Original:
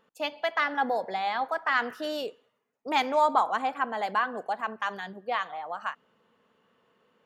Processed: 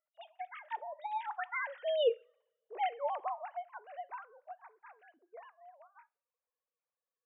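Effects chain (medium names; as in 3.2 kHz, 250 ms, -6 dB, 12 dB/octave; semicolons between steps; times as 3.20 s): formants replaced by sine waves; Doppler pass-by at 2.10 s, 29 m/s, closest 5.1 m; two-slope reverb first 0.3 s, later 1.5 s, from -28 dB, DRR 17.5 dB; trim +2.5 dB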